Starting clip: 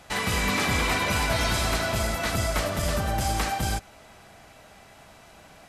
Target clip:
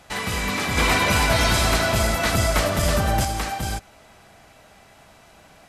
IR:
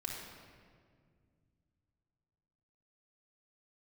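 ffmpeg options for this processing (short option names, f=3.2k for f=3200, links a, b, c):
-filter_complex "[0:a]asettb=1/sr,asplit=3[a][b][c];[a]atrim=end=0.774[d];[b]atrim=start=0.77:end=3.25,asetpts=PTS-STARTPTS,afade=t=in:d=0.004:c=qsin,afade=t=out:st=2.476:d=0.004:c=qsin,acontrast=49[e];[c]atrim=start=3.246[f];[d][e]acrossfade=d=0.004:c1=hsin:c2=qsin[g];[g][f]acrossfade=d=0.004:c1=qsin:c2=hsin"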